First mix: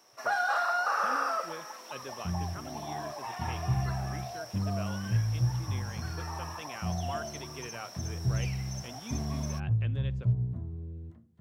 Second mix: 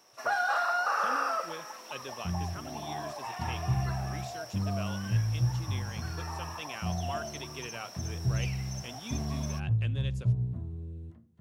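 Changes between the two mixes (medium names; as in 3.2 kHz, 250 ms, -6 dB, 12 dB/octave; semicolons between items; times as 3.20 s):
speech: remove low-pass 2.7 kHz 12 dB/octave; first sound: remove high-pass 160 Hz; master: add peaking EQ 2.7 kHz +3 dB 0.21 oct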